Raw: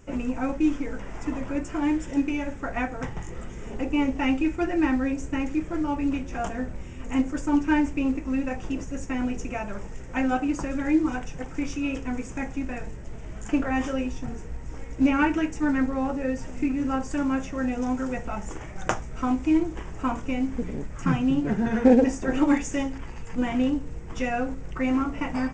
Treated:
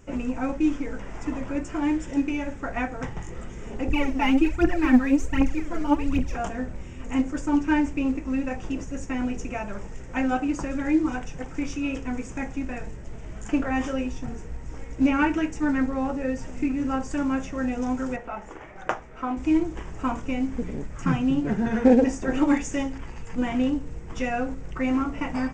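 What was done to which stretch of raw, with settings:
3.88–6.36 phaser 1.3 Hz, delay 5 ms, feedback 72%
18.16–19.37 tone controls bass -12 dB, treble -15 dB

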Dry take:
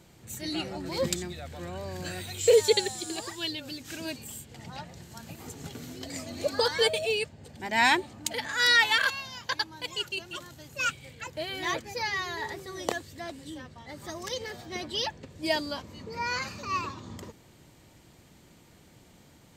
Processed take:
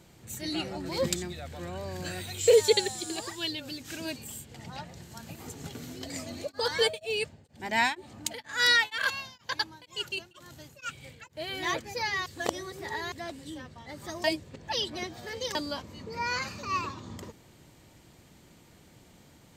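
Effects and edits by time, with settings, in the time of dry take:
6.29–11.56 beating tremolo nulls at 2.1 Hz
12.26–13.12 reverse
14.24–15.55 reverse

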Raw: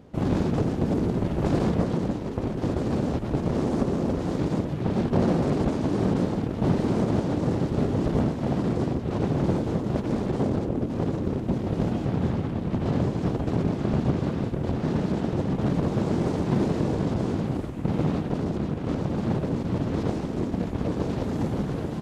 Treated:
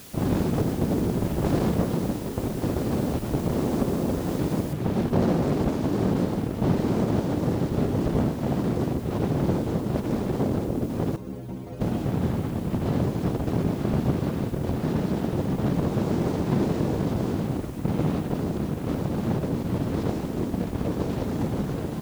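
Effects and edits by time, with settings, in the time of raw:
4.73 noise floor step -46 dB -53 dB
11.16–11.81 metallic resonator 61 Hz, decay 0.41 s, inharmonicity 0.008

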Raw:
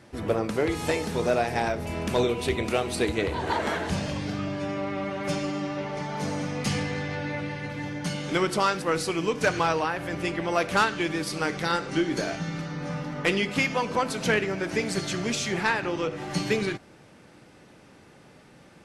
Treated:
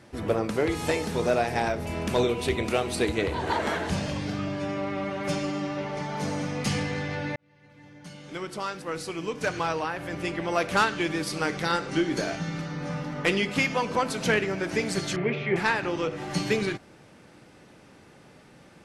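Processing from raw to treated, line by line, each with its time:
7.36–10.9 fade in
15.16–15.56 speaker cabinet 140–2500 Hz, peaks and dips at 140 Hz +10 dB, 270 Hz -7 dB, 410 Hz +9 dB, 1500 Hz -3 dB, 2200 Hz +6 dB

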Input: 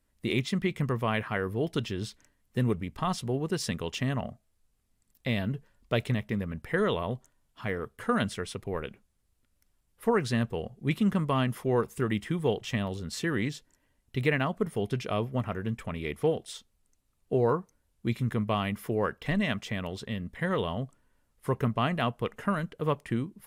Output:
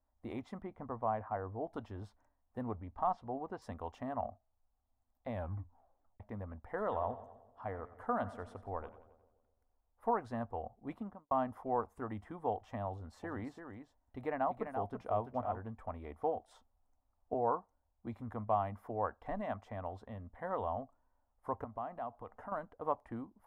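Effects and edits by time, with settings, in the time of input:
0.62–1.72 LPF 1200 Hz 6 dB/oct
2.61–3.62 LPF 4300 Hz
5.32 tape stop 0.88 s
6.71–10.17 split-band echo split 730 Hz, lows 0.127 s, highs 89 ms, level -15 dB
10.87–11.31 studio fade out
12.89–15.6 echo 0.339 s -7.5 dB
16.51–17.34 gain +3.5 dB
21.64–22.52 compressor 4:1, threshold -33 dBFS
whole clip: EQ curve 100 Hz 0 dB, 140 Hz -20 dB, 260 Hz -2 dB, 390 Hz -9 dB, 770 Hz +11 dB, 2700 Hz -20 dB; gain -7 dB

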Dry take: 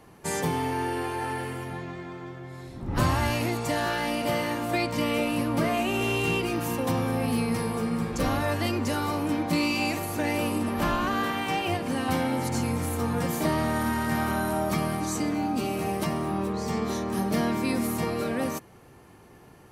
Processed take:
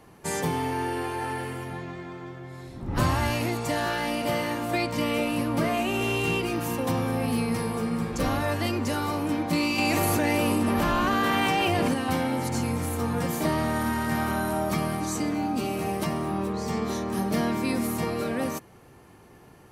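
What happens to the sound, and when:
9.78–11.94 fast leveller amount 100%

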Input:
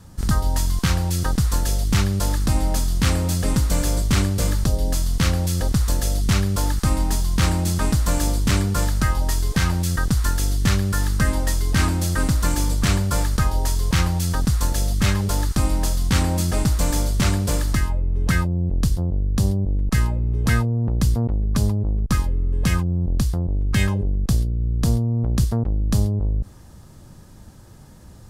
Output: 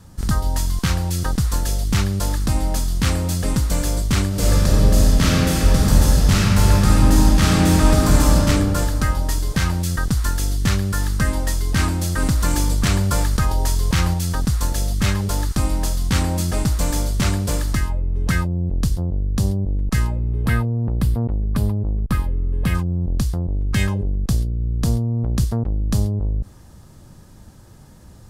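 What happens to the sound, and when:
4.28–8.35 reverb throw, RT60 2.9 s, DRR -5.5 dB
12.22–14.14 fast leveller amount 50%
20.31–22.75 bell 6300 Hz -12.5 dB 0.91 oct

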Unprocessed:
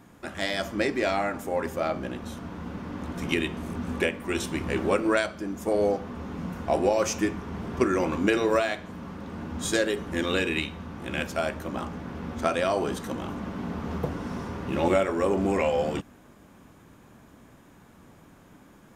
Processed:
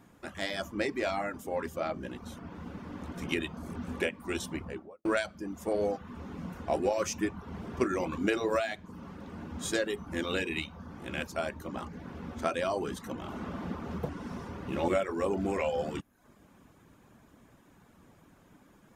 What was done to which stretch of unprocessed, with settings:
4.44–5.05 studio fade out
13.21–13.66 reverb throw, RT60 2.2 s, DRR -1 dB
whole clip: reverb removal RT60 0.52 s; gain -5 dB

